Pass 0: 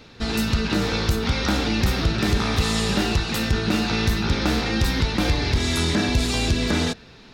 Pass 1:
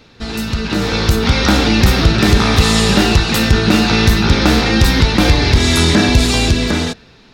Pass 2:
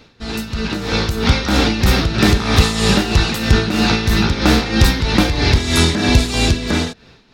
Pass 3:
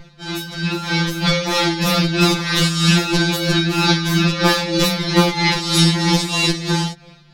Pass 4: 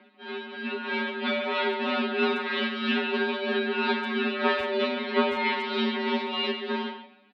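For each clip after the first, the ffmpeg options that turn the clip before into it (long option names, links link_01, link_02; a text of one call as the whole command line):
ffmpeg -i in.wav -af "dynaudnorm=framelen=140:gausssize=13:maxgain=11.5dB,volume=1dB" out.wav
ffmpeg -i in.wav -af "tremolo=f=3.1:d=0.64" out.wav
ffmpeg -i in.wav -af "aeval=exprs='val(0)+0.0398*(sin(2*PI*50*n/s)+sin(2*PI*2*50*n/s)/2+sin(2*PI*3*50*n/s)/3+sin(2*PI*4*50*n/s)/4+sin(2*PI*5*50*n/s)/5)':channel_layout=same,afftfilt=real='re*2.83*eq(mod(b,8),0)':imag='im*2.83*eq(mod(b,8),0)':win_size=2048:overlap=0.75,volume=3dB" out.wav
ffmpeg -i in.wav -filter_complex "[0:a]highpass=frequency=190:width_type=q:width=0.5412,highpass=frequency=190:width_type=q:width=1.307,lowpass=frequency=3300:width_type=q:width=0.5176,lowpass=frequency=3300:width_type=q:width=0.7071,lowpass=frequency=3300:width_type=q:width=1.932,afreqshift=60,asplit=2[link_01][link_02];[link_02]adelay=140,highpass=300,lowpass=3400,asoftclip=type=hard:threshold=-10dB,volume=-7dB[link_03];[link_01][link_03]amix=inputs=2:normalize=0,volume=-8dB" out.wav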